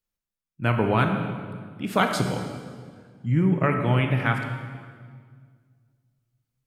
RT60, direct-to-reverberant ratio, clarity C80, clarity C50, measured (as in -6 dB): 1.8 s, 4.0 dB, 6.5 dB, 5.5 dB